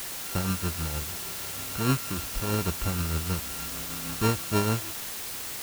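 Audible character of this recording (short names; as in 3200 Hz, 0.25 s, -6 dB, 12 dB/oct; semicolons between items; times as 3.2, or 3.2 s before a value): a buzz of ramps at a fixed pitch in blocks of 32 samples; tremolo triangle 6.4 Hz, depth 55%; a quantiser's noise floor 6-bit, dither triangular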